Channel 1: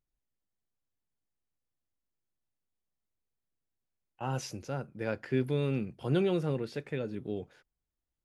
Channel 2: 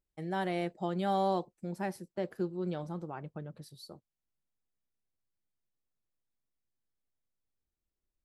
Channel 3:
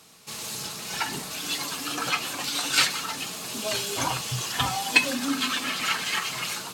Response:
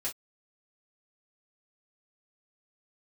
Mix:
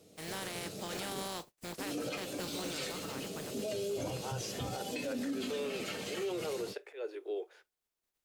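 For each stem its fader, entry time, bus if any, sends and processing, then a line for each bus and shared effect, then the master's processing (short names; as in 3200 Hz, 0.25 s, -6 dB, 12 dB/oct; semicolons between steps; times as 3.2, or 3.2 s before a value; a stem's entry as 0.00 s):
0.0 dB, 0.00 s, send -14 dB, steep high-pass 350 Hz 72 dB/oct; auto swell 0.141 s
-5.0 dB, 0.00 s, send -19.5 dB, spectral contrast lowered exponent 0.37
-6.0 dB, 0.00 s, muted 1.27–1.78, no send, resonant low shelf 730 Hz +11 dB, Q 3; notch 1700 Hz, Q 26; resonator 100 Hz, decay 0.37 s, harmonics all, mix 70%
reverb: on, pre-delay 3 ms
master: limiter -29 dBFS, peak gain reduction 12.5 dB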